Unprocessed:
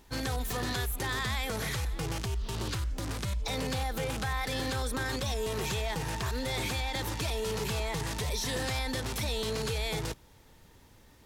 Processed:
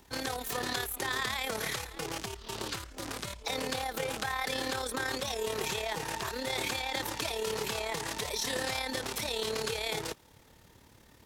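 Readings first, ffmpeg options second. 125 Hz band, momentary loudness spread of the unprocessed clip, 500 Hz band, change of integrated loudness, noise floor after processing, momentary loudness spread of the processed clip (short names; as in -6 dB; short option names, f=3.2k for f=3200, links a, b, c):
-11.5 dB, 3 LU, 0.0 dB, -1.0 dB, -59 dBFS, 6 LU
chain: -filter_complex "[0:a]acrossover=split=270|990|3900[a][b][c][d];[a]acompressor=threshold=-46dB:ratio=5[e];[e][b][c][d]amix=inputs=4:normalize=0,highpass=f=74:p=1,tremolo=f=36:d=0.571,volume=3.5dB"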